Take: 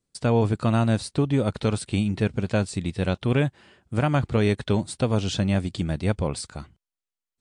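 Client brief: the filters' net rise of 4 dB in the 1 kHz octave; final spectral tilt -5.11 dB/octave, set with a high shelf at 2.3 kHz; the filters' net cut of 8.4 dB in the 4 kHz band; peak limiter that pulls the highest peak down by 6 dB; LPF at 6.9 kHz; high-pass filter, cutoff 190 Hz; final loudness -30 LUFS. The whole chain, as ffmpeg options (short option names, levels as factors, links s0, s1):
-af "highpass=190,lowpass=6900,equalizer=f=1000:t=o:g=7,highshelf=f=2300:g=-7,equalizer=f=4000:t=o:g=-4.5,volume=0.841,alimiter=limit=0.178:level=0:latency=1"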